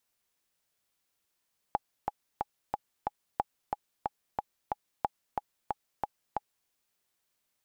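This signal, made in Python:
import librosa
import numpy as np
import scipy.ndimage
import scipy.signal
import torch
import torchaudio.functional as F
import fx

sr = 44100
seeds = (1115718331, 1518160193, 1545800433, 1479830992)

y = fx.click_track(sr, bpm=182, beats=5, bars=3, hz=830.0, accent_db=3.5, level_db=-13.5)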